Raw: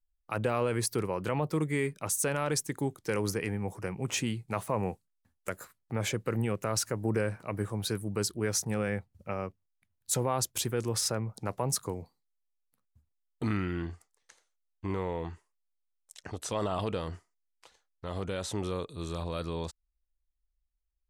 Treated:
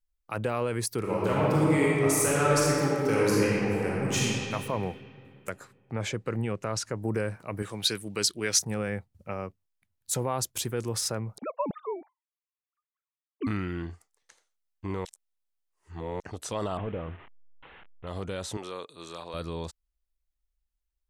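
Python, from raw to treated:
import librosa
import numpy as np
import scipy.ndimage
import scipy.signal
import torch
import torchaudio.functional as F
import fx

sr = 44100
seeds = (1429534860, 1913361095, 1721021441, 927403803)

y = fx.reverb_throw(x, sr, start_s=0.99, length_s=3.21, rt60_s=2.8, drr_db=-6.5)
y = fx.lowpass(y, sr, hz=7100.0, slope=12, at=(5.51, 7.02))
y = fx.weighting(y, sr, curve='D', at=(7.62, 8.59))
y = fx.sine_speech(y, sr, at=(11.38, 13.47))
y = fx.delta_mod(y, sr, bps=16000, step_db=-44.0, at=(16.77, 18.07))
y = fx.weighting(y, sr, curve='A', at=(18.57, 19.34))
y = fx.edit(y, sr, fx.reverse_span(start_s=15.05, length_s=1.15), tone=tone)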